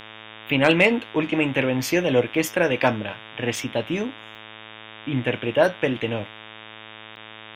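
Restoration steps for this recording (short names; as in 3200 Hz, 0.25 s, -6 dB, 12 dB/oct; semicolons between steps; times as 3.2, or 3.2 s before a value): clip repair -4.5 dBFS; de-hum 109.2 Hz, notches 34; interpolate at 3.56/4.35/7.16, 2.8 ms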